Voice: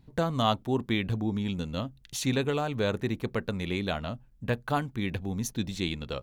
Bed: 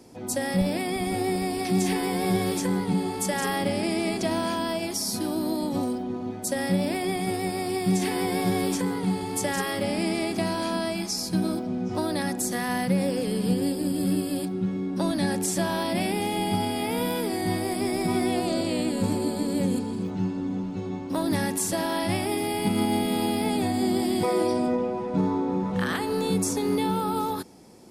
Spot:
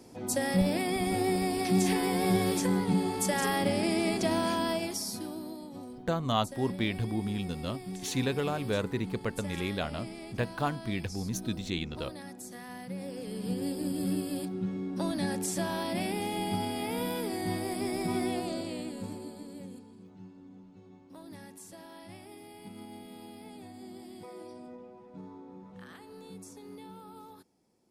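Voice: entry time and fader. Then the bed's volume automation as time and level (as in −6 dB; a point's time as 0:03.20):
5.90 s, −2.5 dB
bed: 0:04.72 −2 dB
0:05.67 −16.5 dB
0:12.83 −16.5 dB
0:13.79 −6 dB
0:18.25 −6 dB
0:19.90 −22 dB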